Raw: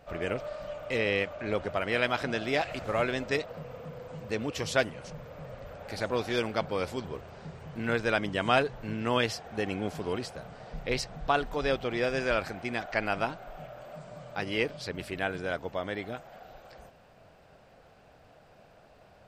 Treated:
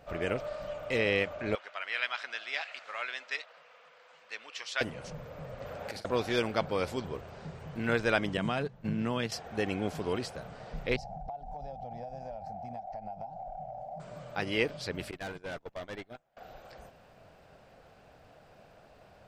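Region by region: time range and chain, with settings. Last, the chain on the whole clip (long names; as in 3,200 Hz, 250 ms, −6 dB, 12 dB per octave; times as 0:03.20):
0:01.55–0:04.81: high-pass filter 1,500 Hz + high-frequency loss of the air 93 metres
0:05.60–0:06.05: high-pass filter 120 Hz 6 dB per octave + compressor whose output falls as the input rises −41 dBFS, ratio −0.5 + double-tracking delay 45 ms −13.5 dB
0:08.37–0:09.32: parametric band 170 Hz +13.5 dB 0.83 octaves + downward compressor, threshold −27 dBFS + noise gate −34 dBFS, range −15 dB
0:10.96–0:14.00: drawn EQ curve 210 Hz 0 dB, 360 Hz −23 dB, 790 Hz +14 dB, 1,100 Hz −23 dB, 3,500 Hz −22 dB, 5,500 Hz −12 dB, 8,400 Hz −20 dB + downward compressor 12 to 1, threshold −37 dBFS
0:15.11–0:16.37: noise gate −36 dBFS, range −25 dB + tube saturation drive 35 dB, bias 0.4
whole clip: no processing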